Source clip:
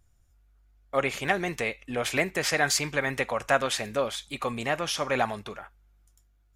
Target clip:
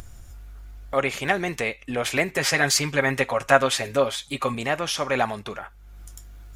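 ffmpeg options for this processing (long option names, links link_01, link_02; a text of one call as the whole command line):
ffmpeg -i in.wav -filter_complex "[0:a]asettb=1/sr,asplit=3[link_01][link_02][link_03];[link_01]atrim=end=2.284[link_04];[link_02]atrim=start=2.28:end=4.55,asetpts=PTS-STARTPTS,afade=type=in:duration=0.004:curve=qsin,afade=type=out:start_time=2.266:duration=0.004:curve=qsin,aecho=1:1:7.4:0.65,atrim=end_sample=100107[link_05];[link_03]atrim=start=4.546[link_06];[link_04][link_05]acrossfade=duration=0.004:curve1=hsin:curve2=qsin[link_07];[link_07][link_06]acrossfade=duration=0.004:curve1=qsin:curve2=hsin,acompressor=mode=upward:threshold=-29dB:ratio=2.5,volume=3dB" out.wav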